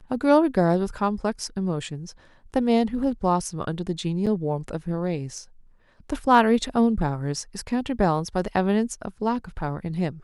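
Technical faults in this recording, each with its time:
0:04.26–0:04.27: drop-out 6.8 ms

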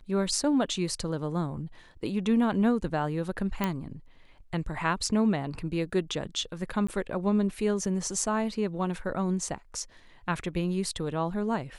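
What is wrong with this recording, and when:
0:03.64: click −13 dBFS
0:06.87–0:06.88: drop-out 15 ms

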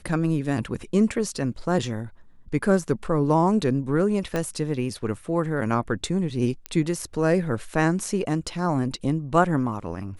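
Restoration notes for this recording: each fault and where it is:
0:04.36: click −13 dBFS
0:06.66: click −14 dBFS

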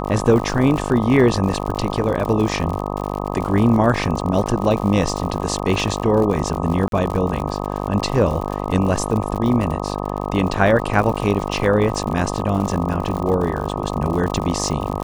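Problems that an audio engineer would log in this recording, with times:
mains buzz 50 Hz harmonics 25 −25 dBFS
surface crackle 81 per second −25 dBFS
0:06.88–0:06.92: drop-out 42 ms

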